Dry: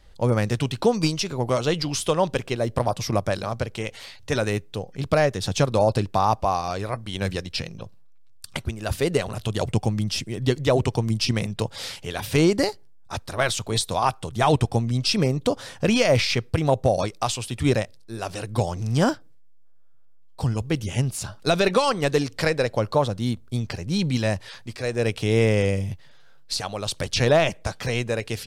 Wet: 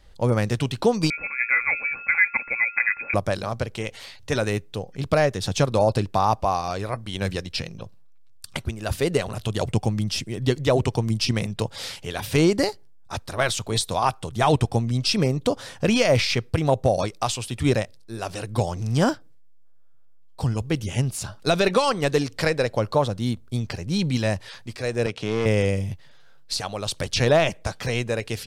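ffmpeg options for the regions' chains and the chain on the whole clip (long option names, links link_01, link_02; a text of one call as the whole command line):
ffmpeg -i in.wav -filter_complex "[0:a]asettb=1/sr,asplit=3[link_01][link_02][link_03];[link_01]atrim=end=1.104[link_04];[link_02]atrim=start=1.1:end=3.14,asetpts=PTS-STARTPTS,afade=type=in:duration=0.004:curve=qsin,afade=type=out:start_time=2.036:duration=0.004:curve=qsin,aecho=1:1:3.4:0.49,atrim=end_sample=89964,aeval=exprs='val(0)+0.00794*sin(2*PI*1200*n/s)':channel_layout=same,lowpass=frequency=2200:width_type=q:width=0.5098,lowpass=frequency=2200:width_type=q:width=0.6013,lowpass=frequency=2200:width_type=q:width=0.9,lowpass=frequency=2200:width_type=q:width=2.563,afreqshift=-2600[link_05];[link_03]atrim=start=3.136[link_06];[link_04][link_05]acrossfade=duration=0.004:curve1=hsin:curve2=qsin[link_07];[link_07][link_06]acrossfade=duration=0.004:curve1=qsin:curve2=hsin,asettb=1/sr,asplit=3[link_08][link_09][link_10];[link_08]atrim=end=25.064[link_11];[link_09]atrim=start=25.06:end=25.46,asetpts=PTS-STARTPTS,afade=type=in:duration=0.004:curve=qsin,afade=type=out:start_time=0.396:duration=0.004:curve=qsin,highpass=130,lowpass=6200,aeval=exprs='(tanh(7.94*val(0)+0.45)-tanh(0.45))/7.94':channel_layout=same[link_12];[link_10]atrim=start=25.456[link_13];[link_11][link_12]acrossfade=duration=0.004:curve1=hsin:curve2=qsin[link_14];[link_14][link_13]acrossfade=duration=0.004:curve1=qsin:curve2=hsin" out.wav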